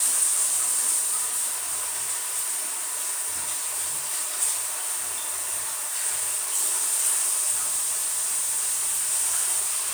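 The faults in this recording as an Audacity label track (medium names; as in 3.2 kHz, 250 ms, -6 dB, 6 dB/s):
1.000000	2.950000	clipped -21 dBFS
7.500000	9.120000	clipped -22 dBFS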